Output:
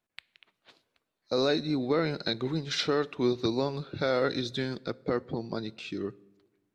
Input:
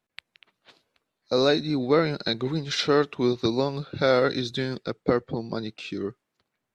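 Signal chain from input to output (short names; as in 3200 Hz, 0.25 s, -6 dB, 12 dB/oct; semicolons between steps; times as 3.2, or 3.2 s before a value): limiter -12.5 dBFS, peak gain reduction 5.5 dB; on a send: reverb RT60 1.2 s, pre-delay 3 ms, DRR 19.5 dB; on the sum: gain -3.5 dB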